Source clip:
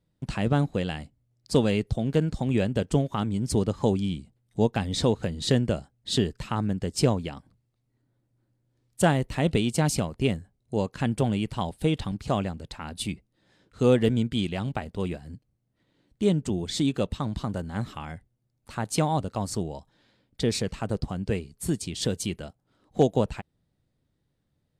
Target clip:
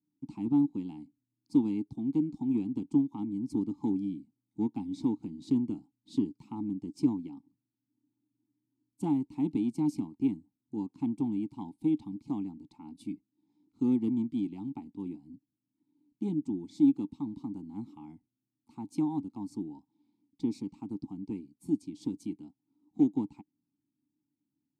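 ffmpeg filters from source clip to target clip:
-filter_complex "[0:a]equalizer=f=125:t=o:w=1:g=5,equalizer=f=250:t=o:w=1:g=9,equalizer=f=500:t=o:w=1:g=-7,equalizer=f=2k:t=o:w=1:g=-10,equalizer=f=4k:t=o:w=1:g=-5,equalizer=f=8k:t=o:w=1:g=-5,aeval=exprs='0.531*(cos(1*acos(clip(val(0)/0.531,-1,1)))-cos(1*PI/2))+0.0119*(cos(7*acos(clip(val(0)/0.531,-1,1)))-cos(7*PI/2))':c=same,acrossover=split=700|1800[a][b][c];[c]aexciter=amount=4.8:drive=5.9:freq=3.9k[d];[a][b][d]amix=inputs=3:normalize=0,asplit=3[e][f][g];[e]bandpass=f=300:t=q:w=8,volume=0dB[h];[f]bandpass=f=870:t=q:w=8,volume=-6dB[i];[g]bandpass=f=2.24k:t=q:w=8,volume=-9dB[j];[h][i][j]amix=inputs=3:normalize=0"

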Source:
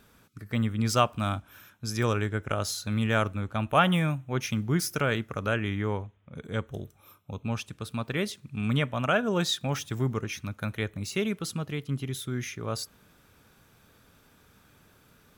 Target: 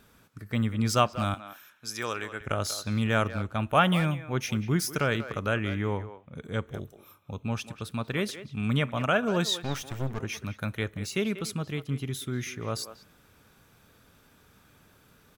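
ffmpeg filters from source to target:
-filter_complex "[0:a]asettb=1/sr,asplit=3[a][b][c];[a]atrim=end=1.344[d];[b]atrim=start=1.34:end=2.41,asetpts=PTS-STARTPTS,afade=t=in:d=0.004:c=qsin,afade=t=out:st=1.066:d=0.004:c=qsin,highpass=f=820:p=1[e];[c]atrim=start=2.406[f];[d][e]acrossfade=d=0.004:c1=hsin:c2=qsin[g];[g][f]acrossfade=d=0.004:c1=qsin:c2=hsin,asettb=1/sr,asplit=3[h][i][j];[h]atrim=end=9.624[k];[i]atrim=start=9.62:end=10.19,asetpts=PTS-STARTPTS,afade=t=in:d=0.004:c=qsin,afade=t=out:st=0.566:d=0.004:c=qsin,aeval=exprs='clip(val(0),-1,0.01)':c=same[l];[j]atrim=start=10.186[m];[k][l]acrossfade=d=0.004:c1=hsin:c2=qsin[n];[n][m]acrossfade=d=0.004:c1=qsin:c2=hsin,asplit=2[o][p];[p]adelay=190,highpass=300,lowpass=3.4k,asoftclip=type=hard:threshold=-17.5dB,volume=-12dB[q];[o][q]amix=inputs=2:normalize=0"

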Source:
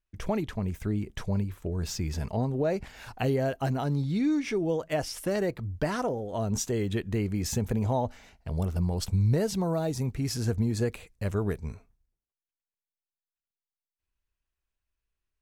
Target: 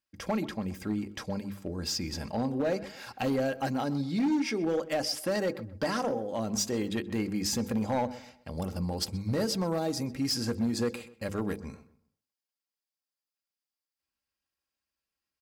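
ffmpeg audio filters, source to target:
-filter_complex "[0:a]highpass=130,equalizer=f=4.9k:w=7.1:g=10.5,bandreject=f=50:t=h:w=6,bandreject=f=100:t=h:w=6,bandreject=f=150:t=h:w=6,bandreject=f=200:t=h:w=6,bandreject=f=250:t=h:w=6,bandreject=f=300:t=h:w=6,bandreject=f=350:t=h:w=6,bandreject=f=400:t=h:w=6,bandreject=f=450:t=h:w=6,bandreject=f=500:t=h:w=6,aecho=1:1:3.7:0.45,asoftclip=type=hard:threshold=-23.5dB,asplit=2[a][b];[b]adelay=127,lowpass=f=2.3k:p=1,volume=-16.5dB,asplit=2[c][d];[d]adelay=127,lowpass=f=2.3k:p=1,volume=0.33,asplit=2[e][f];[f]adelay=127,lowpass=f=2.3k:p=1,volume=0.33[g];[c][e][g]amix=inputs=3:normalize=0[h];[a][h]amix=inputs=2:normalize=0"

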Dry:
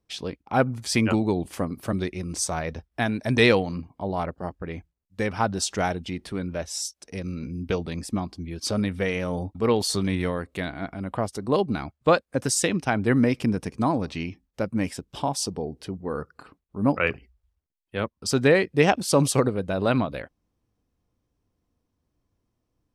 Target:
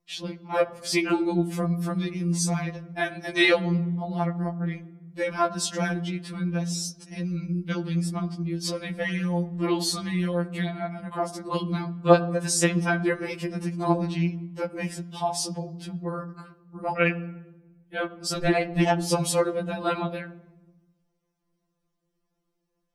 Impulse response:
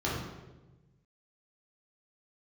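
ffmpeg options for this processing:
-filter_complex "[0:a]asettb=1/sr,asplit=3[a][b][c];[a]atrim=end=18.374[d];[b]atrim=start=18.37:end=19.11,asetpts=PTS-STARTPTS,afade=t=in:d=0.004:c=qsin,afade=t=out:st=0.736:d=0.004:c=qsin,aeval=exprs='val(0)*sin(2*PI*120*n/s)':c=same[e];[c]atrim=start=19.106[f];[d][e]acrossfade=d=0.004:c1=hsin:c2=qsin[g];[g][f]acrossfade=d=0.004:c1=qsin:c2=hsin,asplit=2[h][i];[1:a]atrim=start_sample=2205,adelay=9[j];[i][j]afir=irnorm=-1:irlink=0,volume=-23dB[k];[h][k]amix=inputs=2:normalize=0,afftfilt=real='re*2.83*eq(mod(b,8),0)':imag='im*2.83*eq(mod(b,8),0)':win_size=2048:overlap=0.75,volume=1.5dB"

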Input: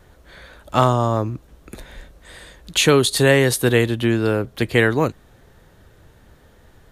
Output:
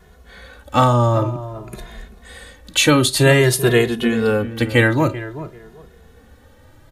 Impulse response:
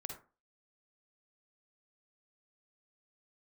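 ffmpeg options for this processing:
-filter_complex "[0:a]asplit=2[a][b];[b]adelay=389,lowpass=f=1.6k:p=1,volume=-13dB,asplit=2[c][d];[d]adelay=389,lowpass=f=1.6k:p=1,volume=0.22,asplit=2[e][f];[f]adelay=389,lowpass=f=1.6k:p=1,volume=0.22[g];[a][c][e][g]amix=inputs=4:normalize=0,asplit=2[h][i];[1:a]atrim=start_sample=2205,asetrate=66150,aresample=44100[j];[i][j]afir=irnorm=-1:irlink=0,volume=-3dB[k];[h][k]amix=inputs=2:normalize=0,asplit=2[l][m];[m]adelay=2.4,afreqshift=0.52[n];[l][n]amix=inputs=2:normalize=1,volume=2.5dB"

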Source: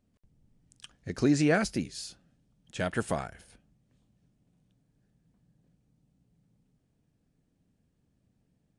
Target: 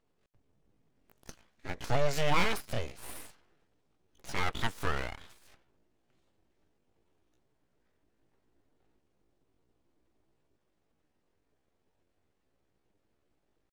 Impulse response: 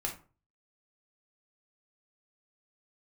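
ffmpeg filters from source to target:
-filter_complex "[0:a]asplit=2[a][b];[b]highpass=f=720:p=1,volume=11dB,asoftclip=type=tanh:threshold=-12dB[c];[a][c]amix=inputs=2:normalize=0,lowpass=f=2.3k:p=1,volume=-6dB,atempo=0.64,aeval=exprs='abs(val(0))':c=same"

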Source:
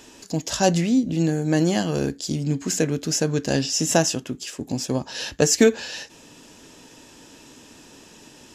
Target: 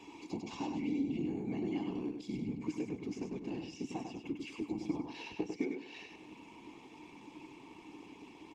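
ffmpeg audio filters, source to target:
-filter_complex "[0:a]acrossover=split=7600[a][b];[b]acompressor=threshold=-42dB:ratio=4:attack=1:release=60[c];[a][c]amix=inputs=2:normalize=0,lowshelf=f=99:g=4,aecho=1:1:1.8:0.95,acompressor=threshold=-30dB:ratio=12,afftfilt=real='hypot(re,im)*cos(2*PI*random(0))':imag='hypot(re,im)*sin(2*PI*random(1))':win_size=512:overlap=0.75,asplit=3[d][e][f];[d]bandpass=f=300:t=q:w=8,volume=0dB[g];[e]bandpass=f=870:t=q:w=8,volume=-6dB[h];[f]bandpass=f=2.24k:t=q:w=8,volume=-9dB[i];[g][h][i]amix=inputs=3:normalize=0,asplit=2[j][k];[k]aecho=0:1:99|198|297:0.531|0.138|0.0359[l];[j][l]amix=inputs=2:normalize=0,volume=15dB" -ar 48000 -c:a libopus -b:a 48k

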